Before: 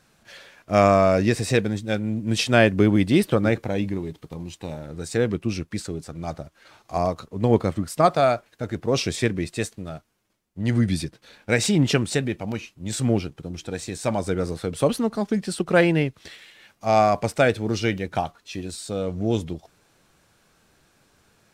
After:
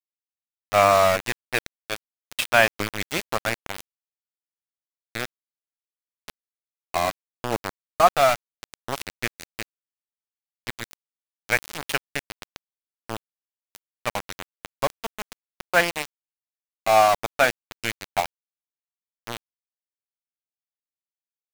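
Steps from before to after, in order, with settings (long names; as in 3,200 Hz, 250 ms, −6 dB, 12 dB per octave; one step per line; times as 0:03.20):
flat-topped bell 1,500 Hz +13 dB 2.8 octaves
centre clipping without the shift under −10 dBFS
level −9.5 dB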